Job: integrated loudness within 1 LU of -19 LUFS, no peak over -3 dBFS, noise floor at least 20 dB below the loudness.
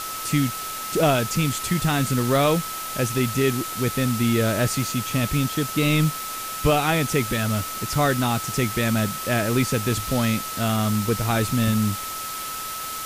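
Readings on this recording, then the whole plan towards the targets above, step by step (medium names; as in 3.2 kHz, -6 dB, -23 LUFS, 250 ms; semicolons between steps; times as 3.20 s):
steady tone 1.3 kHz; tone level -32 dBFS; noise floor -31 dBFS; noise floor target -43 dBFS; loudness -23.0 LUFS; peak level -8.0 dBFS; loudness target -19.0 LUFS
-> band-stop 1.3 kHz, Q 30; noise print and reduce 12 dB; trim +4 dB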